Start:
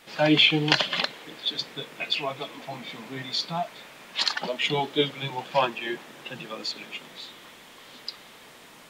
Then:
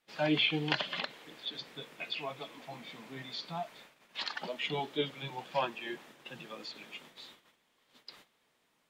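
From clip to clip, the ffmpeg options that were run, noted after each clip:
-filter_complex "[0:a]agate=range=0.158:threshold=0.00562:ratio=16:detection=peak,acrossover=split=4100[s0][s1];[s1]acompressor=threshold=0.00891:ratio=4:attack=1:release=60[s2];[s0][s2]amix=inputs=2:normalize=0,volume=0.355"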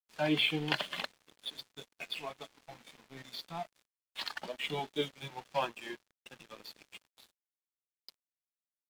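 -af "aeval=exprs='sgn(val(0))*max(abs(val(0))-0.00422,0)':c=same"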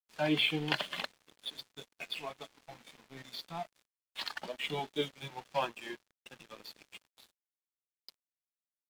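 -af anull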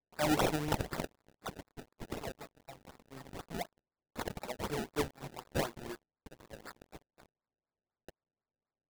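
-af "acrusher=samples=28:mix=1:aa=0.000001:lfo=1:lforange=28:lforate=4"

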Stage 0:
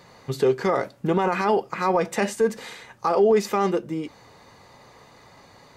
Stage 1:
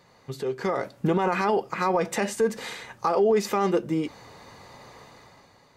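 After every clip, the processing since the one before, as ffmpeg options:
-af "alimiter=limit=0.141:level=0:latency=1:release=210,dynaudnorm=f=100:g=13:m=3.35,volume=0.422"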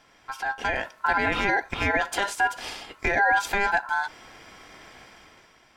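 -af "equalizer=f=3400:w=4.2:g=5.5,aeval=exprs='val(0)*sin(2*PI*1200*n/s)':c=same,volume=1.33"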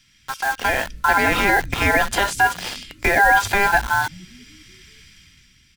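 -filter_complex "[0:a]acrossover=split=210|2100[s0][s1][s2];[s0]asplit=8[s3][s4][s5][s6][s7][s8][s9][s10];[s4]adelay=189,afreqshift=-64,volume=0.708[s11];[s5]adelay=378,afreqshift=-128,volume=0.367[s12];[s6]adelay=567,afreqshift=-192,volume=0.191[s13];[s7]adelay=756,afreqshift=-256,volume=0.1[s14];[s8]adelay=945,afreqshift=-320,volume=0.0519[s15];[s9]adelay=1134,afreqshift=-384,volume=0.0269[s16];[s10]adelay=1323,afreqshift=-448,volume=0.014[s17];[s3][s11][s12][s13][s14][s15][s16][s17]amix=inputs=8:normalize=0[s18];[s1]acrusher=bits=5:mix=0:aa=0.000001[s19];[s18][s19][s2]amix=inputs=3:normalize=0,volume=2.11"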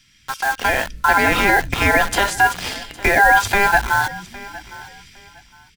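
-af "aecho=1:1:810|1620:0.106|0.0254,volume=1.26"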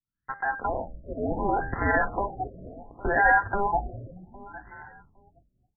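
-af "bandreject=f=79.66:t=h:w=4,bandreject=f=159.32:t=h:w=4,bandreject=f=238.98:t=h:w=4,bandreject=f=318.64:t=h:w=4,bandreject=f=398.3:t=h:w=4,bandreject=f=477.96:t=h:w=4,bandreject=f=557.62:t=h:w=4,bandreject=f=637.28:t=h:w=4,bandreject=f=716.94:t=h:w=4,bandreject=f=796.6:t=h:w=4,bandreject=f=876.26:t=h:w=4,bandreject=f=955.92:t=h:w=4,bandreject=f=1035.58:t=h:w=4,bandreject=f=1115.24:t=h:w=4,bandreject=f=1194.9:t=h:w=4,bandreject=f=1274.56:t=h:w=4,bandreject=f=1354.22:t=h:w=4,bandreject=f=1433.88:t=h:w=4,bandreject=f=1513.54:t=h:w=4,bandreject=f=1593.2:t=h:w=4,bandreject=f=1672.86:t=h:w=4,bandreject=f=1752.52:t=h:w=4,bandreject=f=1832.18:t=h:w=4,bandreject=f=1911.84:t=h:w=4,bandreject=f=1991.5:t=h:w=4,bandreject=f=2071.16:t=h:w=4,bandreject=f=2150.82:t=h:w=4,bandreject=f=2230.48:t=h:w=4,bandreject=f=2310.14:t=h:w=4,bandreject=f=2389.8:t=h:w=4,bandreject=f=2469.46:t=h:w=4,bandreject=f=2549.12:t=h:w=4,bandreject=f=2628.78:t=h:w=4,bandreject=f=2708.44:t=h:w=4,bandreject=f=2788.1:t=h:w=4,bandreject=f=2867.76:t=h:w=4,bandreject=f=2947.42:t=h:w=4,bandreject=f=3027.08:t=h:w=4,bandreject=f=3106.74:t=h:w=4,agate=range=0.0224:threshold=0.00891:ratio=3:detection=peak,afftfilt=real='re*lt(b*sr/1024,670*pow(2100/670,0.5+0.5*sin(2*PI*0.68*pts/sr)))':imag='im*lt(b*sr/1024,670*pow(2100/670,0.5+0.5*sin(2*PI*0.68*pts/sr)))':win_size=1024:overlap=0.75,volume=0.447"

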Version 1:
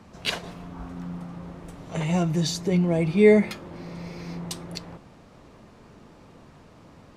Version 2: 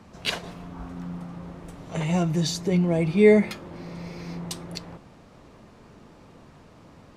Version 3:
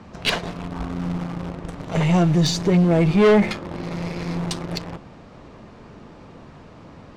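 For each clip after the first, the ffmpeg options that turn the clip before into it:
-af anull
-filter_complex "[0:a]asplit=2[s0][s1];[s1]acrusher=bits=3:dc=4:mix=0:aa=0.000001,volume=0.501[s2];[s0][s2]amix=inputs=2:normalize=0,adynamicsmooth=sensitivity=0.5:basefreq=6500,asoftclip=type=tanh:threshold=0.126,volume=2.24"

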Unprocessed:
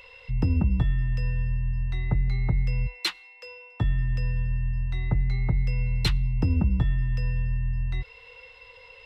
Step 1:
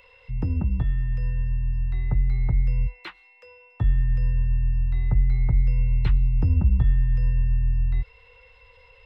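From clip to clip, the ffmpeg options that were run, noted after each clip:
-filter_complex "[0:a]acrossover=split=2500[s0][s1];[s1]acompressor=threshold=0.00126:ratio=4:attack=1:release=60[s2];[s0][s2]amix=inputs=2:normalize=0,asubboost=boost=2.5:cutoff=130,volume=0.708"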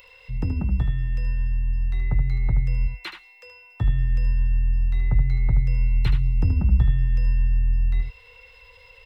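-af "crystalizer=i=3:c=0,aecho=1:1:76:0.398"

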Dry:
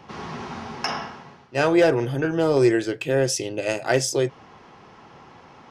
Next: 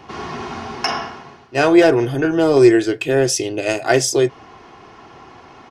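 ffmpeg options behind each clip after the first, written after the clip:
-af "aecho=1:1:2.8:0.41,volume=1.78"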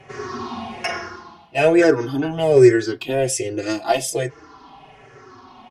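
-filter_complex "[0:a]afftfilt=real='re*pow(10,12/40*sin(2*PI*(0.5*log(max(b,1)*sr/1024/100)/log(2)-(-1.2)*(pts-256)/sr)))':imag='im*pow(10,12/40*sin(2*PI*(0.5*log(max(b,1)*sr/1024/100)/log(2)-(-1.2)*(pts-256)/sr)))':win_size=1024:overlap=0.75,asplit=2[s0][s1];[s1]adelay=4.8,afreqshift=-0.39[s2];[s0][s2]amix=inputs=2:normalize=1,volume=0.841"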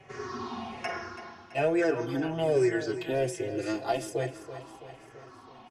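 -filter_complex "[0:a]acrossover=split=500|2100[s0][s1][s2];[s0]acompressor=threshold=0.1:ratio=4[s3];[s1]acompressor=threshold=0.1:ratio=4[s4];[s2]acompressor=threshold=0.0158:ratio=4[s5];[s3][s4][s5]amix=inputs=3:normalize=0,asplit=2[s6][s7];[s7]aecho=0:1:331|662|993|1324|1655|1986:0.237|0.13|0.0717|0.0395|0.0217|0.0119[s8];[s6][s8]amix=inputs=2:normalize=0,volume=0.422"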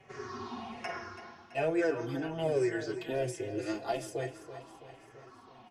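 -af "flanger=delay=4.2:depth=6.2:regen=66:speed=1.3:shape=sinusoidal"

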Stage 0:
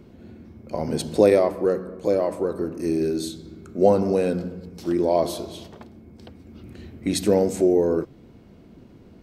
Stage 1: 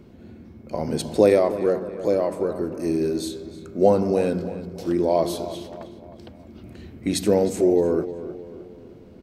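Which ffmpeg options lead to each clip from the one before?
-filter_complex "[0:a]asplit=2[s0][s1];[s1]adelay=310,lowpass=f=3200:p=1,volume=0.224,asplit=2[s2][s3];[s3]adelay=310,lowpass=f=3200:p=1,volume=0.48,asplit=2[s4][s5];[s5]adelay=310,lowpass=f=3200:p=1,volume=0.48,asplit=2[s6][s7];[s7]adelay=310,lowpass=f=3200:p=1,volume=0.48,asplit=2[s8][s9];[s9]adelay=310,lowpass=f=3200:p=1,volume=0.48[s10];[s0][s2][s4][s6][s8][s10]amix=inputs=6:normalize=0"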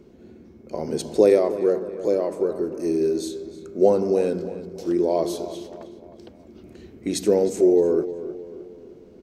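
-af "equalizer=f=100:t=o:w=0.67:g=-6,equalizer=f=400:t=o:w=0.67:g=8,equalizer=f=6300:t=o:w=0.67:g=6,volume=0.596"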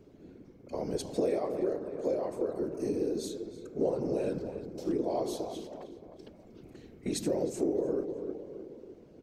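-af "afftfilt=real='hypot(re,im)*cos(2*PI*random(0))':imag='hypot(re,im)*sin(2*PI*random(1))':win_size=512:overlap=0.75,acompressor=threshold=0.0398:ratio=3"

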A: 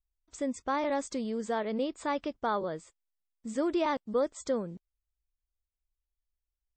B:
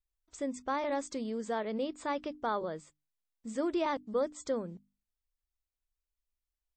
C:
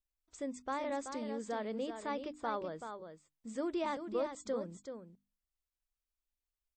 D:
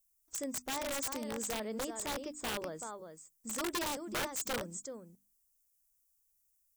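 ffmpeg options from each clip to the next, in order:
-af "bandreject=f=50:t=h:w=6,bandreject=f=100:t=h:w=6,bandreject=f=150:t=h:w=6,bandreject=f=200:t=h:w=6,bandreject=f=250:t=h:w=6,bandreject=f=300:t=h:w=6,volume=0.75"
-af "aecho=1:1:381:0.398,volume=0.596"
-af "aexciter=amount=6.1:drive=7:freq=5600,aeval=exprs='(mod(31.6*val(0)+1,2)-1)/31.6':c=same"

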